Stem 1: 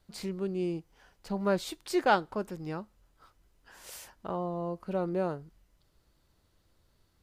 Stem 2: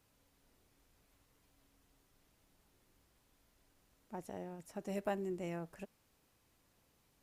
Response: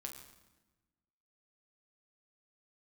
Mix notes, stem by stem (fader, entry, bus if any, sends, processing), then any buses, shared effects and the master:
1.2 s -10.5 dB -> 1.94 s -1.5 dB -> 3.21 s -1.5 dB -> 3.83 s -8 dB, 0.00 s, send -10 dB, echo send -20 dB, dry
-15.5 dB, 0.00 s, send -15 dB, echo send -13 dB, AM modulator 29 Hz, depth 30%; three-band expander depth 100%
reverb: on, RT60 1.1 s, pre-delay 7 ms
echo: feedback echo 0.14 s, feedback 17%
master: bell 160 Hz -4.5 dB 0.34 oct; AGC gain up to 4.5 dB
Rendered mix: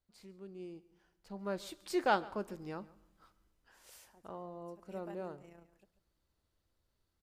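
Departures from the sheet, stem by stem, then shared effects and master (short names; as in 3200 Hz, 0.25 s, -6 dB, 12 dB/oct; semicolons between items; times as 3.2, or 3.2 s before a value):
stem 1 -10.5 dB -> -20.0 dB; stem 2 -15.5 dB -> -25.0 dB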